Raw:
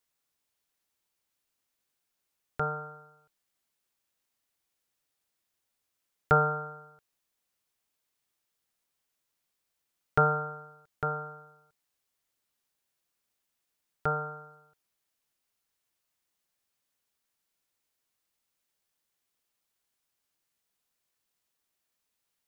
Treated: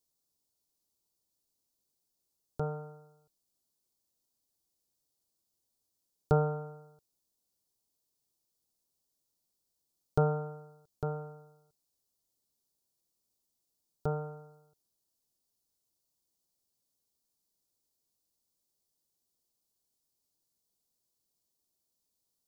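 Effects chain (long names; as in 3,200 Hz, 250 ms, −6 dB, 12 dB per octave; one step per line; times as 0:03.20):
drawn EQ curve 360 Hz 0 dB, 1,000 Hz −8 dB, 1,900 Hz −26 dB, 4,500 Hz −1 dB
level +1.5 dB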